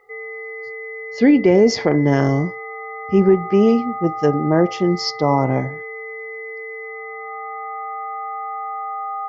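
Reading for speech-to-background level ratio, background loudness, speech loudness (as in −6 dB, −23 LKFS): 12.5 dB, −29.5 LKFS, −17.0 LKFS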